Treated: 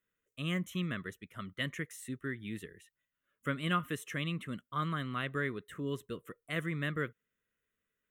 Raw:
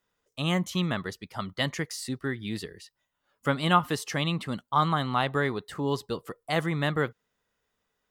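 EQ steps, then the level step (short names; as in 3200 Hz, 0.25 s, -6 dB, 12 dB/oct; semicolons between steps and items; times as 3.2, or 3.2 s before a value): low shelf 140 Hz -4.5 dB; fixed phaser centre 2000 Hz, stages 4; -5.0 dB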